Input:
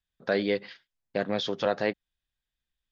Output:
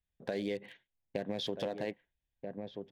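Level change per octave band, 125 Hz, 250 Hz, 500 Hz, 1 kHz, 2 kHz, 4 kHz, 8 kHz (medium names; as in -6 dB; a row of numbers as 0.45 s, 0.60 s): -5.5 dB, -6.5 dB, -9.0 dB, -11.5 dB, -13.0 dB, -7.0 dB, no reading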